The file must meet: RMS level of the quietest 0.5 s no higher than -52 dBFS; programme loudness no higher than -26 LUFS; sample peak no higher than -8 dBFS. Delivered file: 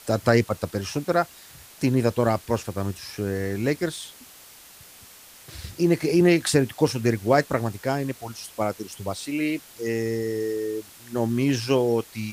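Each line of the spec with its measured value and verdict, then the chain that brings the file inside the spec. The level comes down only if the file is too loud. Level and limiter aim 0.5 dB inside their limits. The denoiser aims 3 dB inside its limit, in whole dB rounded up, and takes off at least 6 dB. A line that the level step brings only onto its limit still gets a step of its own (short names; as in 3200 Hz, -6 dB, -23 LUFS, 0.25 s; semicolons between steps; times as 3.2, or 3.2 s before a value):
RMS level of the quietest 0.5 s -48 dBFS: fail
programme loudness -25.0 LUFS: fail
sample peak -4.5 dBFS: fail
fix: denoiser 6 dB, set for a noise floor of -48 dBFS; gain -1.5 dB; limiter -8.5 dBFS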